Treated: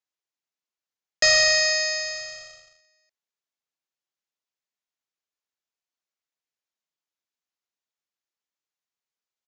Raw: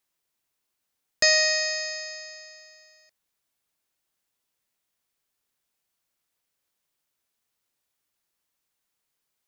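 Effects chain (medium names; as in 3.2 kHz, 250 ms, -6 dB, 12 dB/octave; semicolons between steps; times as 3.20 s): high-pass 260 Hz 6 dB/octave; waveshaping leveller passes 3; resampled via 16 kHz; trim -4.5 dB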